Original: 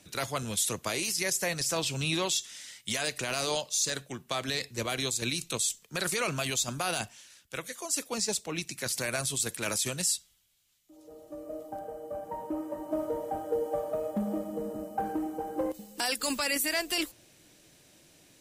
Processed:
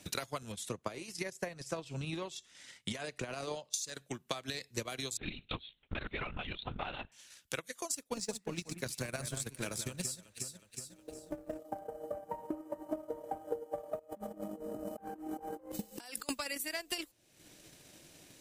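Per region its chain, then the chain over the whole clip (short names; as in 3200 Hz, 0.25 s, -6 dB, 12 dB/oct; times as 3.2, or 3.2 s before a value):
0.52–3.74 LPF 12000 Hz 24 dB/oct + high shelf 2700 Hz -11.5 dB
5.17–7.12 bell 520 Hz -4 dB 1 oct + LPC vocoder at 8 kHz whisper
7.92–11.59 G.711 law mismatch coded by A + low shelf 250 Hz +9.5 dB + echo with dull and thin repeats by turns 0.183 s, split 2100 Hz, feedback 59%, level -7 dB
13.99–16.29 de-hum 51.51 Hz, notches 4 + negative-ratio compressor -42 dBFS
whole clip: transient shaper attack +12 dB, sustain -8 dB; compressor 3:1, threshold -41 dBFS; gain +1 dB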